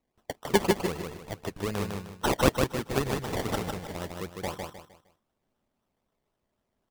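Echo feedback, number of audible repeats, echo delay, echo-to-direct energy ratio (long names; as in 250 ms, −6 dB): 33%, 4, 154 ms, −3.5 dB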